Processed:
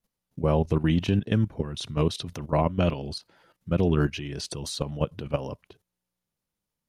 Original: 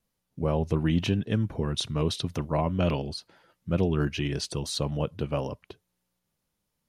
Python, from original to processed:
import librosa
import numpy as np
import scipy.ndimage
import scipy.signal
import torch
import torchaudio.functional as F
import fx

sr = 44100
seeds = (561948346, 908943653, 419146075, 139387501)

y = fx.level_steps(x, sr, step_db=13)
y = y * librosa.db_to_amplitude(5.0)